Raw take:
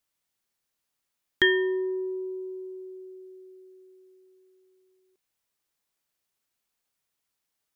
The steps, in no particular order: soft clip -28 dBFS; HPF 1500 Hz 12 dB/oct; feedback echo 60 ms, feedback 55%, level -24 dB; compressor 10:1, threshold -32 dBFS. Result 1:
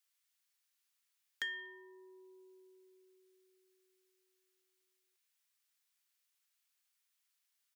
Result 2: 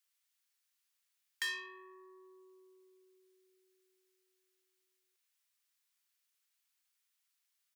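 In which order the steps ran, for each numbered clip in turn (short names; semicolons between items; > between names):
feedback echo > compressor > HPF > soft clip; feedback echo > soft clip > compressor > HPF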